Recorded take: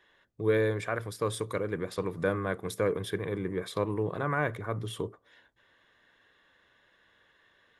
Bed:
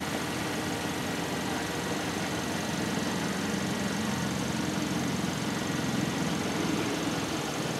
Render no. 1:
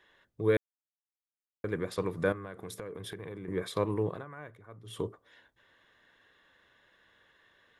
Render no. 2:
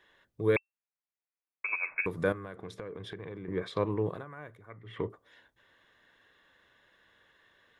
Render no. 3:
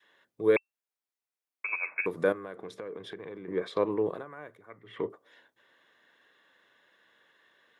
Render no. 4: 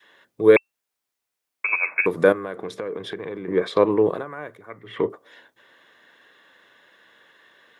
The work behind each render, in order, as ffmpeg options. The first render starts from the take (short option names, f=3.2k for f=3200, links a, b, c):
-filter_complex "[0:a]asettb=1/sr,asplit=3[a][b][c];[a]atrim=end=2.324[d];[b]atrim=start=2.32:end=3.48,asetpts=PTS-STARTPTS,afade=t=in:d=0.004:c=qsin,afade=t=out:st=1.156:d=0.004:c=qsin,acompressor=threshold=-37dB:ratio=12:attack=3.2:release=140:knee=1:detection=peak[e];[c]atrim=start=3.476[f];[d][e]acrossfade=d=0.004:c1=hsin:c2=qsin[g];[g][f]acrossfade=d=0.004:c1=qsin:c2=hsin,asplit=5[h][i][j][k][l];[h]atrim=end=0.57,asetpts=PTS-STARTPTS,afade=t=out:st=0.566:d=0.004:c=hsin[m];[i]atrim=start=0.57:end=1.64,asetpts=PTS-STARTPTS,volume=0[n];[j]atrim=start=1.64:end=4.25,asetpts=PTS-STARTPTS,afade=t=in:d=0.004:c=hsin,afade=t=out:st=2.43:d=0.18:silence=0.141254[o];[k]atrim=start=4.25:end=4.84,asetpts=PTS-STARTPTS,volume=-17dB[p];[l]atrim=start=4.84,asetpts=PTS-STARTPTS,afade=t=in:d=0.18:silence=0.141254[q];[m][n][o][p][q]concat=n=5:v=0:a=1"
-filter_complex "[0:a]asettb=1/sr,asplit=3[a][b][c];[a]atrim=end=0.564[d];[b]atrim=start=0.56:end=2.06,asetpts=PTS-STARTPTS,afade=t=in:d=0.004:c=qsin,afade=t=out:st=1.496:d=0.004:c=qsin,lowpass=f=2.3k:t=q:w=0.5098,lowpass=f=2.3k:t=q:w=0.6013,lowpass=f=2.3k:t=q:w=0.9,lowpass=f=2.3k:t=q:w=2.563,afreqshift=-2700[e];[c]atrim=start=2.056[f];[d][e]acrossfade=d=0.004:c1=hsin:c2=qsin[g];[g][f]acrossfade=d=0.004:c1=qsin:c2=hsin,asettb=1/sr,asplit=3[h][i][j];[h]atrim=end=2.564[k];[i]atrim=start=2.56:end=4.06,asetpts=PTS-STARTPTS,afade=t=in:d=0.004:c=qsin,afade=t=out:st=1.496:d=0.004:c=qsin,lowpass=4.3k[l];[j]atrim=start=4.056[m];[k][l]acrossfade=d=0.004:c1=hsin:c2=qsin[n];[n][m]acrossfade=d=0.004:c1=qsin:c2=hsin,asettb=1/sr,asplit=3[o][p][q];[o]atrim=end=4.704[r];[p]atrim=start=4.7:end=5.1,asetpts=PTS-STARTPTS,afade=t=in:d=0.004:c=qsin,afade=t=out:st=0.396:d=0.004:c=qsin,lowpass=f=2k:t=q:w=9.5[s];[q]atrim=start=5.096[t];[r][s]acrossfade=d=0.004:c1=hsin:c2=qsin[u];[u][t]acrossfade=d=0.004:c1=qsin:c2=hsin"
-af "highpass=210,adynamicequalizer=threshold=0.00794:dfrequency=470:dqfactor=0.77:tfrequency=470:tqfactor=0.77:attack=5:release=100:ratio=0.375:range=2:mode=boostabove:tftype=bell"
-af "volume=10dB"